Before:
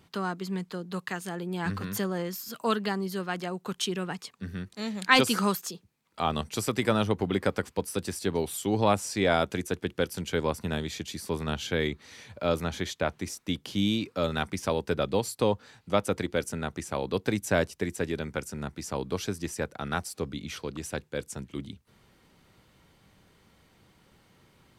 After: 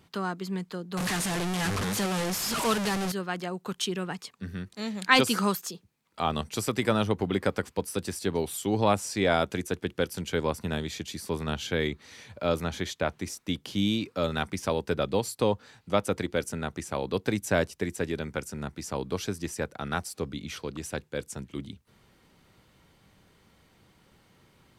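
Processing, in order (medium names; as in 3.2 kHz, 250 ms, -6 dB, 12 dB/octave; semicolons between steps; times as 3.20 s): 0.97–3.12 s: one-bit delta coder 64 kbps, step -23 dBFS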